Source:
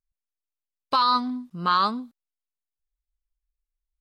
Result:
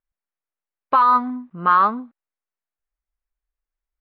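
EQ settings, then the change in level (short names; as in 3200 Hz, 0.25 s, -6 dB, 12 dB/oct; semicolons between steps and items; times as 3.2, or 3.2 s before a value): LPF 2100 Hz 24 dB/oct; low shelf 250 Hz -10 dB; +7.0 dB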